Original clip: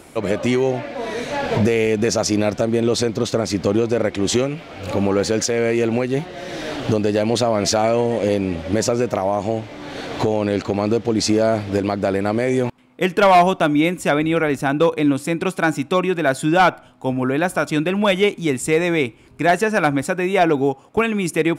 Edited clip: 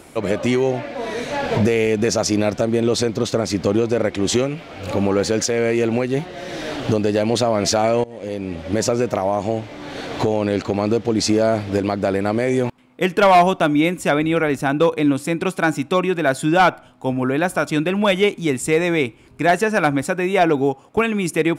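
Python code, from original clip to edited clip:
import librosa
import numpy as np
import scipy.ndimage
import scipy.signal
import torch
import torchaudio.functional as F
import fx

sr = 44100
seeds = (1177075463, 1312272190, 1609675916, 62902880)

y = fx.edit(x, sr, fx.fade_in_from(start_s=8.04, length_s=0.82, floor_db=-23.0), tone=tone)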